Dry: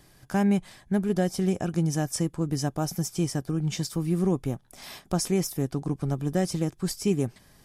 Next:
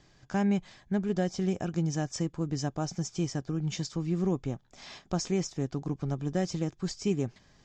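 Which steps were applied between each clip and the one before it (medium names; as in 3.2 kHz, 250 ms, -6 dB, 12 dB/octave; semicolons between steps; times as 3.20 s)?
elliptic low-pass 7.1 kHz, stop band 40 dB; trim -3 dB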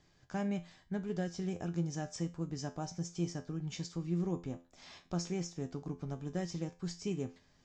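feedback comb 86 Hz, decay 0.31 s, harmonics all, mix 70%; trim -1 dB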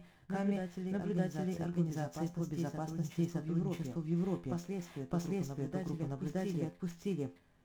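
median filter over 9 samples; wow and flutter 38 cents; reverse echo 615 ms -3 dB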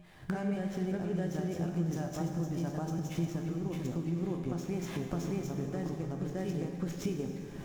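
recorder AGC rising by 60 dB/s; on a send at -5 dB: reverberation RT60 3.2 s, pre-delay 26 ms; on the sum: trim -1 dB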